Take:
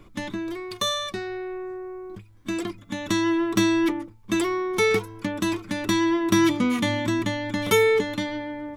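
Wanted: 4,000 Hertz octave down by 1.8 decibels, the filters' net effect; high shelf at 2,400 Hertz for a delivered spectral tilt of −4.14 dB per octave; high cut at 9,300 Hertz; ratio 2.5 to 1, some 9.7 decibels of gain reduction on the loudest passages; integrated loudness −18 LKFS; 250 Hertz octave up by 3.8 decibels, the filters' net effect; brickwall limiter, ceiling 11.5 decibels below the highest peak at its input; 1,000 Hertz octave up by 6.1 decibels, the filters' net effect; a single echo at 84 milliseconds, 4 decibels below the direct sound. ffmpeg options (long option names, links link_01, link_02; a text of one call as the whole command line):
ffmpeg -i in.wav -af "lowpass=9300,equalizer=frequency=250:width_type=o:gain=5,equalizer=frequency=1000:width_type=o:gain=6,highshelf=frequency=2400:gain=5.5,equalizer=frequency=4000:width_type=o:gain=-7,acompressor=threshold=-26dB:ratio=2.5,alimiter=limit=-22dB:level=0:latency=1,aecho=1:1:84:0.631,volume=10.5dB" out.wav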